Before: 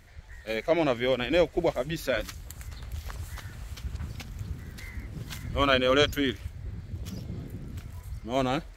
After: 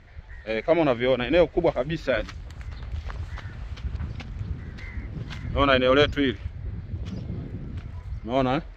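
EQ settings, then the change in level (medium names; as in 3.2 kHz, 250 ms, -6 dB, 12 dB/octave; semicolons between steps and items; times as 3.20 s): distance through air 190 m; +4.5 dB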